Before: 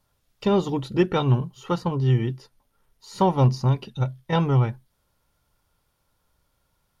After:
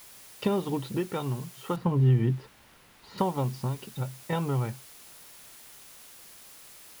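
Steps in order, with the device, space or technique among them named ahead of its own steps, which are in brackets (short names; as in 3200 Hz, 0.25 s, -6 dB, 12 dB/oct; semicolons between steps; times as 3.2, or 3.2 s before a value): medium wave at night (BPF 110–4000 Hz; compressor, threshold -26 dBFS, peak gain reduction 11.5 dB; tremolo 0.38 Hz, depth 51%; whine 10000 Hz -62 dBFS; white noise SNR 18 dB); 1.76–3.18 tone controls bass +6 dB, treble -13 dB; gain +4 dB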